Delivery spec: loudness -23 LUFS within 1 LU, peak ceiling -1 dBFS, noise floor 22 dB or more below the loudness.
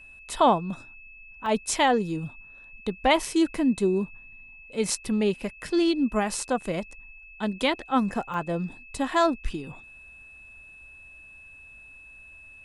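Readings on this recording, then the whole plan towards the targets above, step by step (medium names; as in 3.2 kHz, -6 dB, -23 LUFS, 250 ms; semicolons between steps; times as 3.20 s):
dropouts 2; longest dropout 1.7 ms; steady tone 2.6 kHz; tone level -46 dBFS; loudness -26.0 LUFS; peak level -9.0 dBFS; loudness target -23.0 LUFS
-> interpolate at 1.46/8.34 s, 1.7 ms; band-stop 2.6 kHz, Q 30; trim +3 dB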